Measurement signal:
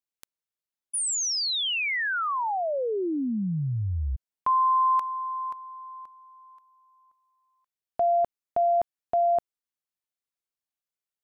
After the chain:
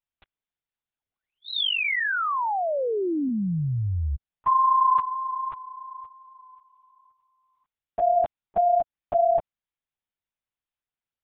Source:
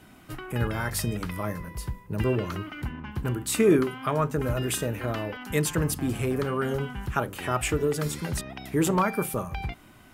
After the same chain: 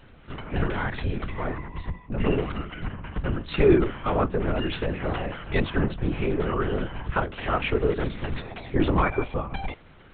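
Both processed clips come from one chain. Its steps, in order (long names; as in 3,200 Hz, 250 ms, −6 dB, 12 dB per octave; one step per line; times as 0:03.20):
linear-prediction vocoder at 8 kHz whisper
level +2 dB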